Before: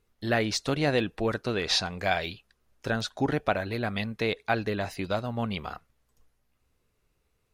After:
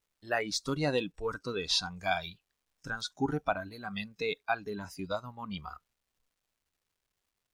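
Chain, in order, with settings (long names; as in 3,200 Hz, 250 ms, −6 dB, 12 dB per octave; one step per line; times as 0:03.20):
surface crackle 570 per second −50 dBFS
noise reduction from a noise print of the clip's start 16 dB
level −3 dB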